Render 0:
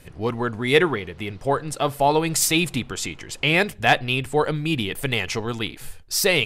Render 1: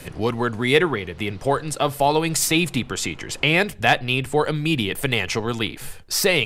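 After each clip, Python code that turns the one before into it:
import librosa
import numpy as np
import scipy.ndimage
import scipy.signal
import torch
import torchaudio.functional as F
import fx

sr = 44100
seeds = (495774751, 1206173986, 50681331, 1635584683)

y = fx.band_squash(x, sr, depth_pct=40)
y = y * librosa.db_to_amplitude(1.0)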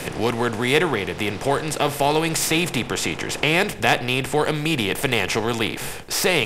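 y = fx.bin_compress(x, sr, power=0.6)
y = y * librosa.db_to_amplitude(-3.5)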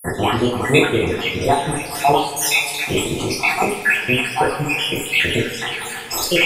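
y = fx.spec_dropout(x, sr, seeds[0], share_pct=74)
y = fx.rev_double_slope(y, sr, seeds[1], early_s=0.41, late_s=3.7, knee_db=-18, drr_db=-6.5)
y = y * librosa.db_to_amplitude(2.0)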